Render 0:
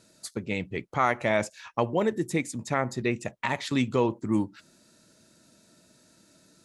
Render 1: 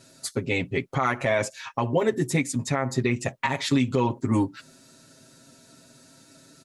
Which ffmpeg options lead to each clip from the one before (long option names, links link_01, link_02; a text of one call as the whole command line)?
ffmpeg -i in.wav -af "aecho=1:1:7.5:0.98,alimiter=limit=-16dB:level=0:latency=1:release=142,volume=4dB" out.wav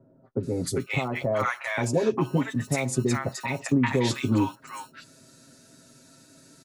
ffmpeg -i in.wav -filter_complex "[0:a]acrossover=split=140[link_01][link_02];[link_01]acrusher=samples=32:mix=1:aa=0.000001[link_03];[link_03][link_02]amix=inputs=2:normalize=0,acrossover=split=870|3100[link_04][link_05][link_06];[link_05]adelay=400[link_07];[link_06]adelay=430[link_08];[link_04][link_07][link_08]amix=inputs=3:normalize=0" out.wav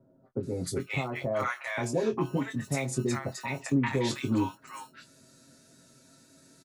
ffmpeg -i in.wav -filter_complex "[0:a]asplit=2[link_01][link_02];[link_02]adelay=22,volume=-8dB[link_03];[link_01][link_03]amix=inputs=2:normalize=0,volume=-5dB" out.wav